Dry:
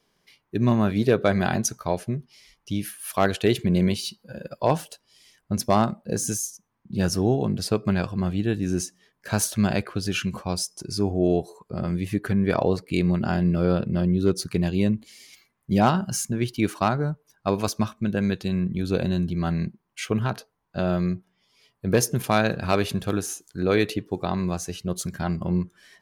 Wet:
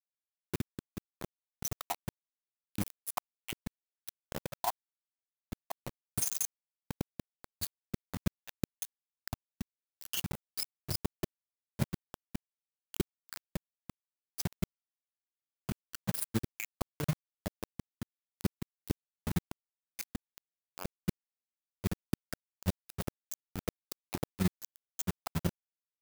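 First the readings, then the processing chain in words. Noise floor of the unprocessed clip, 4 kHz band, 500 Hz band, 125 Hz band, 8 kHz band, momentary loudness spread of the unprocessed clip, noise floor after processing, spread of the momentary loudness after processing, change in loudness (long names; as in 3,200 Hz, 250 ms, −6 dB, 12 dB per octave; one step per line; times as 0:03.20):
−73 dBFS, −12.0 dB, −21.0 dB, −15.0 dB, −10.5 dB, 9 LU, below −85 dBFS, 13 LU, −15.0 dB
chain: time-frequency cells dropped at random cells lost 64%
low-shelf EQ 230 Hz +8 dB
gate with flip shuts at −13 dBFS, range −38 dB
bit reduction 5 bits
amplitude modulation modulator 22 Hz, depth 55%
high-shelf EQ 10,000 Hz +10.5 dB
level −4 dB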